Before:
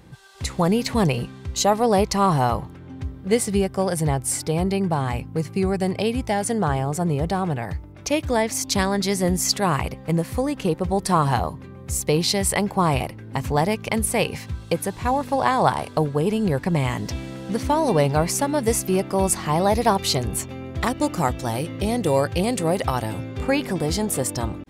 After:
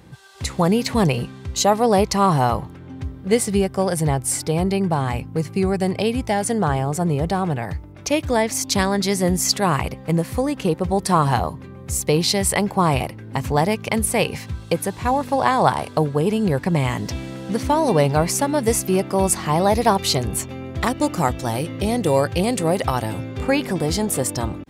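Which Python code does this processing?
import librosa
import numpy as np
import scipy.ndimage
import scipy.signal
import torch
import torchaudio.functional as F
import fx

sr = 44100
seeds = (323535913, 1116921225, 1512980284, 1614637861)

y = scipy.signal.sosfilt(scipy.signal.butter(2, 53.0, 'highpass', fs=sr, output='sos'), x)
y = F.gain(torch.from_numpy(y), 2.0).numpy()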